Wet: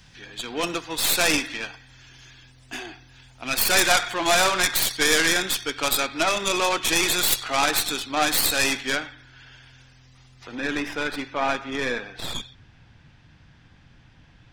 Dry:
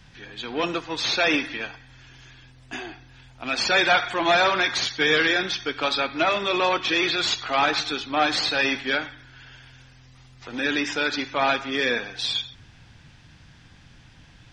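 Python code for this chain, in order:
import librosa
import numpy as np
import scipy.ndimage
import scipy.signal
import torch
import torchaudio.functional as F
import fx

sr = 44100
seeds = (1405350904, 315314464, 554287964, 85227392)

y = fx.tracing_dist(x, sr, depth_ms=0.16)
y = fx.high_shelf(y, sr, hz=4500.0, db=fx.steps((0.0, 10.0), (8.9, 3.0), (10.54, -10.5)))
y = F.gain(torch.from_numpy(y), -2.0).numpy()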